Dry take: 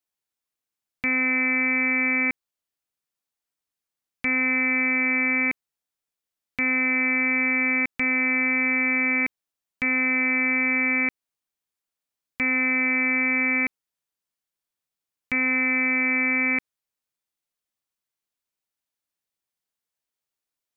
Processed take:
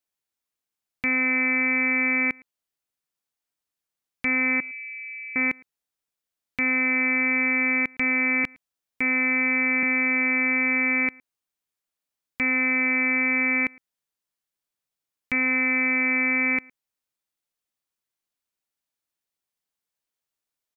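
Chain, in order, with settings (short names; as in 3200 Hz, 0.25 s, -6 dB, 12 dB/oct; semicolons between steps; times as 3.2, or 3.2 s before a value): 4.6–5.36 steep high-pass 2900 Hz 36 dB/oct; 8.44–9.83 reverse; outdoor echo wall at 19 m, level -26 dB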